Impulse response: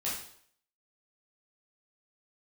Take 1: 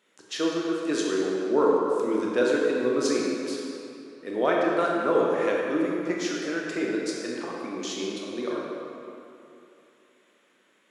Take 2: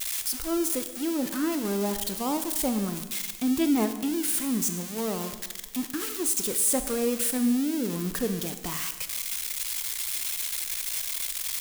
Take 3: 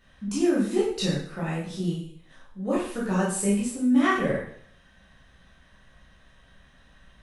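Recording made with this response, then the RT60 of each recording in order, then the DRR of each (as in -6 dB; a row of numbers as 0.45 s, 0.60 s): 3; 2.9 s, 1.2 s, 0.60 s; -3.0 dB, 8.5 dB, -7.5 dB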